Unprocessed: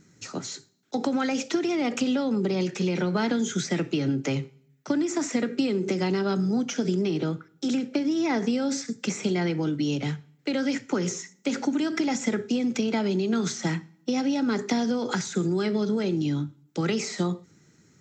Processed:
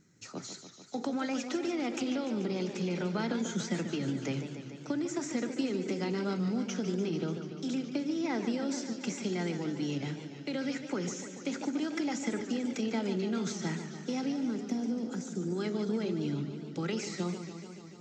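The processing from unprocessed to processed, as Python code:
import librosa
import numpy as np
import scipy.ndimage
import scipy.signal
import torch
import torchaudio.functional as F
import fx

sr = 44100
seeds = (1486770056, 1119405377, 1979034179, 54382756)

y = fx.graphic_eq(x, sr, hz=(125, 250, 500, 1000, 2000, 4000), db=(-5, 3, -3, -10, -8, -11), at=(14.32, 15.48))
y = fx.echo_warbled(y, sr, ms=146, feedback_pct=75, rate_hz=2.8, cents=154, wet_db=-10.0)
y = F.gain(torch.from_numpy(y), -8.0).numpy()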